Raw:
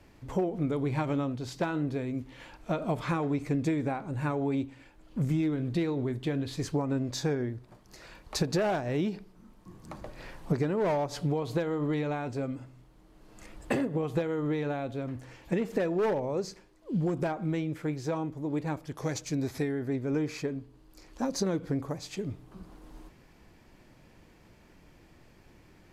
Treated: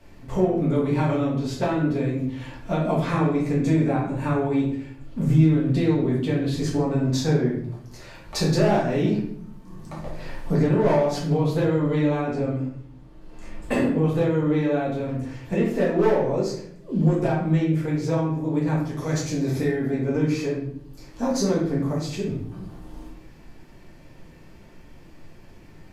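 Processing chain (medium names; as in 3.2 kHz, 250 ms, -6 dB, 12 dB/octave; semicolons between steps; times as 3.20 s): 12.21–13.63 s: treble shelf 6.5 kHz -9 dB; reverberation RT60 0.65 s, pre-delay 4 ms, DRR -5.5 dB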